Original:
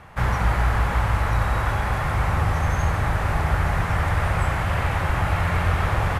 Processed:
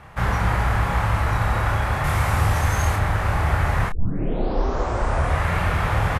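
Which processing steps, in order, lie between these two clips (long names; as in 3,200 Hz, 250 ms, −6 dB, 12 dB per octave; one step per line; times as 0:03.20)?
0:02.04–0:02.96: high-shelf EQ 4,300 Hz +10 dB
0:03.89: tape start 1.63 s
double-tracking delay 28 ms −5 dB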